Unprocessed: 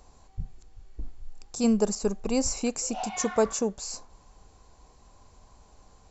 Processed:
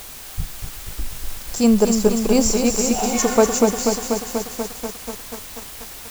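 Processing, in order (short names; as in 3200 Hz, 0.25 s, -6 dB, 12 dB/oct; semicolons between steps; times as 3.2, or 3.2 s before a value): in parallel at -6 dB: requantised 6-bit, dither triangular; on the sum: lo-fi delay 0.243 s, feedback 80%, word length 7-bit, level -6 dB; gain +4.5 dB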